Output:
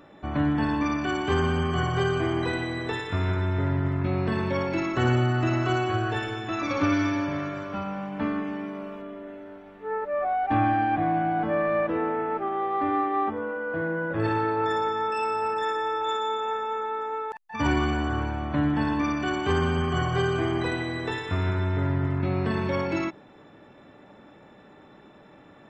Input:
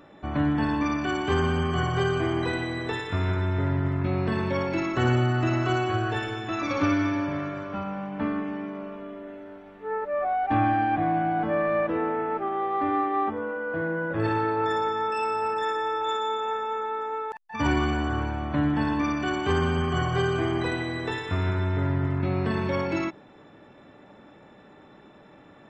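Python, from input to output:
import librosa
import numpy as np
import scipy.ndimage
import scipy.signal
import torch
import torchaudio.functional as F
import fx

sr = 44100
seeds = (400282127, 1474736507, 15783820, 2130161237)

y = fx.high_shelf(x, sr, hz=4600.0, db=9.0, at=(6.92, 9.02))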